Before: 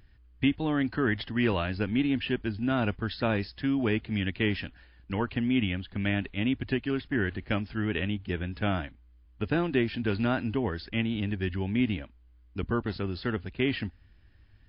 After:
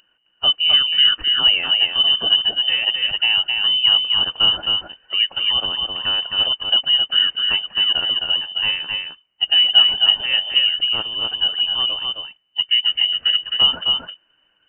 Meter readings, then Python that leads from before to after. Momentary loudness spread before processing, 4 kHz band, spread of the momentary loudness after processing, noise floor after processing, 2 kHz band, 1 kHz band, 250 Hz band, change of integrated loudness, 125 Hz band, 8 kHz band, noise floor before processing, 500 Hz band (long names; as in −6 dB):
6 LU, +29.0 dB, 8 LU, −64 dBFS, +8.5 dB, +4.5 dB, −17.0 dB, +14.0 dB, below −10 dB, can't be measured, −58 dBFS, −6.5 dB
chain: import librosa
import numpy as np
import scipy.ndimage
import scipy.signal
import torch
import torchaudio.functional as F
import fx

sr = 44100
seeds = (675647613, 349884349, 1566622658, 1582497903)

p1 = fx.spec_quant(x, sr, step_db=15)
p2 = scipy.signal.sosfilt(scipy.signal.butter(8, 300.0, 'highpass', fs=sr, output='sos'), p1)
p3 = fx.low_shelf_res(p2, sr, hz=610.0, db=10.0, q=1.5)
p4 = p3 + fx.echo_single(p3, sr, ms=263, db=-4.0, dry=0)
p5 = fx.freq_invert(p4, sr, carrier_hz=3300)
y = p5 * 10.0 ** (4.0 / 20.0)